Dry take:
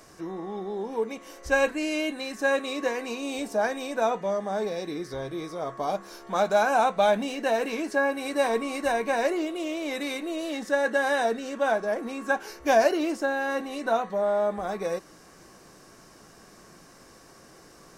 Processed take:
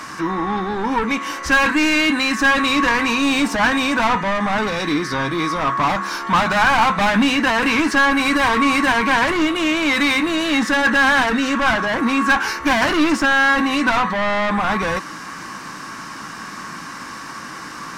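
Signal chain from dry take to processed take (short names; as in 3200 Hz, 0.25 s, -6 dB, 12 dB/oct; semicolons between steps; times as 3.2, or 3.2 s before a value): overdrive pedal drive 27 dB, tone 1400 Hz, clips at -9.5 dBFS; band shelf 520 Hz -14.5 dB 1.3 oct; gain +7.5 dB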